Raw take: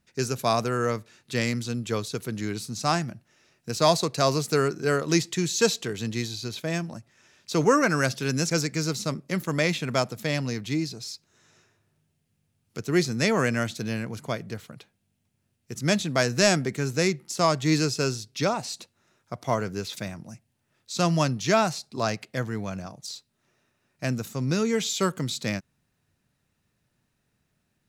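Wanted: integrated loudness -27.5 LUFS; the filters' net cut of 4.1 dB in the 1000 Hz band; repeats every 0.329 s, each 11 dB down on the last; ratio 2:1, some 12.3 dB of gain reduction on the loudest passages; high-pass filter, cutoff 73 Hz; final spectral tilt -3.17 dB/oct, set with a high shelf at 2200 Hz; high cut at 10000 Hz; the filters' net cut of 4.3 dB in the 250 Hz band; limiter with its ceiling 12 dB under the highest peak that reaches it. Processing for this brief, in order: HPF 73 Hz; LPF 10000 Hz; bell 250 Hz -6 dB; bell 1000 Hz -7 dB; high shelf 2200 Hz +6.5 dB; compressor 2:1, threshold -39 dBFS; limiter -26 dBFS; feedback echo 0.329 s, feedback 28%, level -11 dB; gain +11 dB

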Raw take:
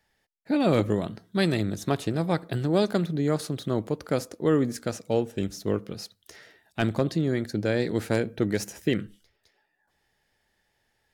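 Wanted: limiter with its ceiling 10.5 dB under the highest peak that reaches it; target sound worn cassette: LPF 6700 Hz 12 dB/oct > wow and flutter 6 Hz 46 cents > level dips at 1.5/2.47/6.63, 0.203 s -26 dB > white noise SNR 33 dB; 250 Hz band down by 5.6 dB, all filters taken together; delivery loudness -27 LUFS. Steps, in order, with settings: bell 250 Hz -8 dB; limiter -22.5 dBFS; LPF 6700 Hz 12 dB/oct; wow and flutter 6 Hz 46 cents; level dips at 1.5/2.47/6.63, 0.203 s -26 dB; white noise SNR 33 dB; gain +8 dB

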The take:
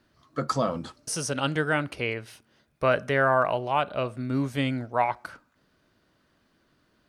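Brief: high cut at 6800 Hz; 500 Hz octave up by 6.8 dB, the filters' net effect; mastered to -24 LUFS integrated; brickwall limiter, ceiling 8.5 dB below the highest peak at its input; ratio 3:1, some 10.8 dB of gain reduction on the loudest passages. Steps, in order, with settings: LPF 6800 Hz; bell 500 Hz +8.5 dB; compressor 3:1, threshold -28 dBFS; gain +11.5 dB; limiter -13 dBFS

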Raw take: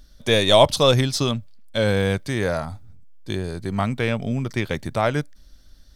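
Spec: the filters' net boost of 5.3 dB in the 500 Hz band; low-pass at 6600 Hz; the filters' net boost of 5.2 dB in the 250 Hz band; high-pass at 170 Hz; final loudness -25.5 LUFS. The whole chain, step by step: HPF 170 Hz; LPF 6600 Hz; bell 250 Hz +6.5 dB; bell 500 Hz +5 dB; gain -7 dB

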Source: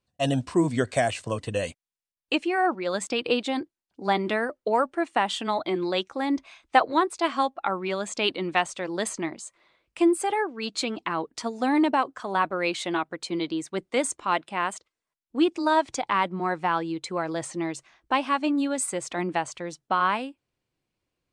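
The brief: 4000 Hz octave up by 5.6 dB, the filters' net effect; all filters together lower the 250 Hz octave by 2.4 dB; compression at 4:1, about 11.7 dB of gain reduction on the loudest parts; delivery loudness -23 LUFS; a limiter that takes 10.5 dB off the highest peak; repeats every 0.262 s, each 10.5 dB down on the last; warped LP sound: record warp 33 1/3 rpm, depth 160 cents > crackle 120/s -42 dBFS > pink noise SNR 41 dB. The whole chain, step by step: bell 250 Hz -3.5 dB; bell 4000 Hz +7.5 dB; compressor 4:1, threshold -27 dBFS; limiter -22 dBFS; feedback echo 0.262 s, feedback 30%, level -10.5 dB; record warp 33 1/3 rpm, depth 160 cents; crackle 120/s -42 dBFS; pink noise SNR 41 dB; gain +10 dB

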